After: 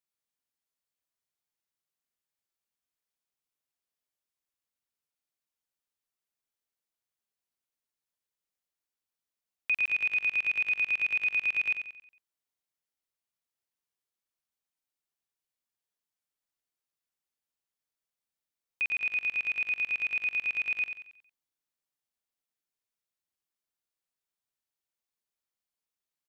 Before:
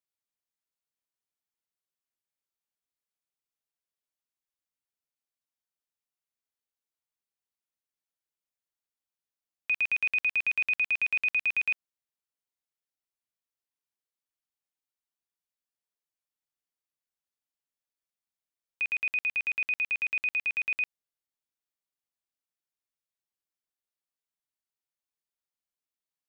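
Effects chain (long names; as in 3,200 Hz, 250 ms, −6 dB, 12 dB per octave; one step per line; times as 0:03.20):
repeating echo 91 ms, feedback 41%, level −8 dB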